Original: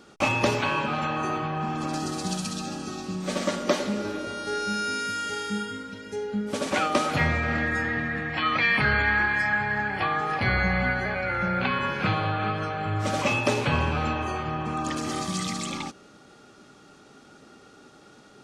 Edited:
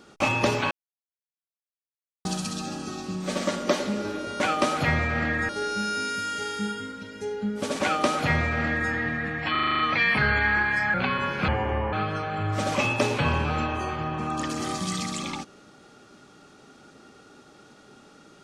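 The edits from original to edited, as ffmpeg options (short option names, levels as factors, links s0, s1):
-filter_complex "[0:a]asplit=15[s0][s1][s2][s3][s4][s5][s6][s7][s8][s9][s10][s11][s12][s13][s14];[s0]atrim=end=0.71,asetpts=PTS-STARTPTS,afade=t=out:st=0.706:d=0.004:c=hsin[s15];[s1]atrim=start=0.71:end=2.25,asetpts=PTS-STARTPTS,volume=0[s16];[s2]atrim=start=2.25:end=4.402,asetpts=PTS-STARTPTS,afade=t=in:d=0.004:c=hsin[s17];[s3]atrim=start=6.728:end=7.822[s18];[s4]atrim=start=4.398:end=8.462[s19];[s5]atrim=start=8.418:end=8.462[s20];[s6]atrim=start=8.418:end=8.462[s21];[s7]atrim=start=8.418:end=8.462[s22];[s8]atrim=start=8.418:end=8.462[s23];[s9]atrim=start=8.418:end=8.462[s24];[s10]atrim=start=8.418:end=8.462[s25];[s11]atrim=start=8.418:end=9.572[s26];[s12]atrim=start=11.548:end=12.094[s27];[s13]atrim=start=12.09:end=12.4,asetpts=PTS-STARTPTS,asetrate=30429,aresample=44100,atrim=end_sample=19813,asetpts=PTS-STARTPTS[s28];[s14]atrim=start=12.396[s29];[s15][s16][s17]concat=n=3:v=0:a=1[s30];[s30][s18]acrossfade=d=0.004:c1=hsin:c2=hsin[s31];[s31][s19]acrossfade=d=0.004:c1=hsin:c2=hsin[s32];[s32][s20]acrossfade=d=0.004:c1=hsin:c2=hsin[s33];[s33][s21]acrossfade=d=0.004:c1=hsin:c2=hsin[s34];[s34][s22]acrossfade=d=0.004:c1=hsin:c2=hsin[s35];[s35][s23]acrossfade=d=0.004:c1=hsin:c2=hsin[s36];[s36][s24]acrossfade=d=0.004:c1=hsin:c2=hsin[s37];[s37][s25]acrossfade=d=0.004:c1=hsin:c2=hsin[s38];[s38][s26]acrossfade=d=0.004:c1=hsin:c2=hsin[s39];[s39][s27]acrossfade=d=0.004:c1=hsin:c2=hsin[s40];[s40][s28]acrossfade=d=0.004:c1=hsin:c2=hsin[s41];[s41][s29]acrossfade=d=0.004:c1=hsin:c2=hsin"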